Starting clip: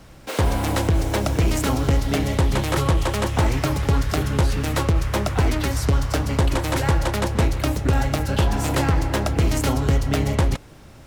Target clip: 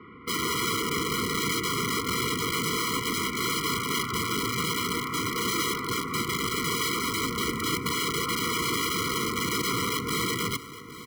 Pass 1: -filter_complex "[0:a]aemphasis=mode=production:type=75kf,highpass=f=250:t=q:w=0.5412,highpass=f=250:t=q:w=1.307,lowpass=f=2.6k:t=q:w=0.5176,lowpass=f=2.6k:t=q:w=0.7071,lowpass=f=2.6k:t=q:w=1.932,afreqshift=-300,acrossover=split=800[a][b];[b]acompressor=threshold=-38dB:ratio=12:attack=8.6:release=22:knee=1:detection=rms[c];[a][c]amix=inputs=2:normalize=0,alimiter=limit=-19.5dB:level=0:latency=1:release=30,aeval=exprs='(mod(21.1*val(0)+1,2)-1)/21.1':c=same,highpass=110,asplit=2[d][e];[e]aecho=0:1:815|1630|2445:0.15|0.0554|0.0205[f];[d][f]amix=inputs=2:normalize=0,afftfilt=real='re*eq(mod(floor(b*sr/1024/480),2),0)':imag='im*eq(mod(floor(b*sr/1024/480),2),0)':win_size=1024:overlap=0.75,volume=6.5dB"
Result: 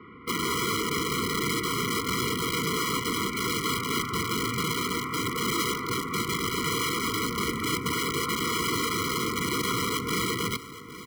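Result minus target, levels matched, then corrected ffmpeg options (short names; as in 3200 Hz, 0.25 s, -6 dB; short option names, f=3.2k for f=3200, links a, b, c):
compressor: peak gain reduction +7 dB
-filter_complex "[0:a]aemphasis=mode=production:type=75kf,highpass=f=250:t=q:w=0.5412,highpass=f=250:t=q:w=1.307,lowpass=f=2.6k:t=q:w=0.5176,lowpass=f=2.6k:t=q:w=0.7071,lowpass=f=2.6k:t=q:w=1.932,afreqshift=-300,acrossover=split=800[a][b];[b]acompressor=threshold=-30.5dB:ratio=12:attack=8.6:release=22:knee=1:detection=rms[c];[a][c]amix=inputs=2:normalize=0,alimiter=limit=-19.5dB:level=0:latency=1:release=30,aeval=exprs='(mod(21.1*val(0)+1,2)-1)/21.1':c=same,highpass=110,asplit=2[d][e];[e]aecho=0:1:815|1630|2445:0.15|0.0554|0.0205[f];[d][f]amix=inputs=2:normalize=0,afftfilt=real='re*eq(mod(floor(b*sr/1024/480),2),0)':imag='im*eq(mod(floor(b*sr/1024/480),2),0)':win_size=1024:overlap=0.75,volume=6.5dB"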